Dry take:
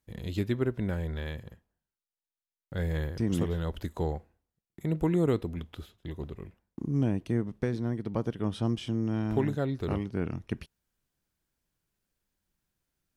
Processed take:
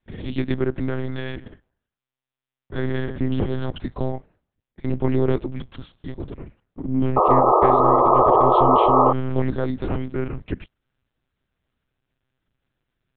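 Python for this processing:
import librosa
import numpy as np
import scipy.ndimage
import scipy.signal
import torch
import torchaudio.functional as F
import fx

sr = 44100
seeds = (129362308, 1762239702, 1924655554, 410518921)

y = fx.lpc_monotone(x, sr, seeds[0], pitch_hz=130.0, order=8)
y = fx.spec_paint(y, sr, seeds[1], shape='noise', start_s=7.16, length_s=1.97, low_hz=330.0, high_hz=1300.0, level_db=-22.0)
y = y * 10.0 ** (6.5 / 20.0)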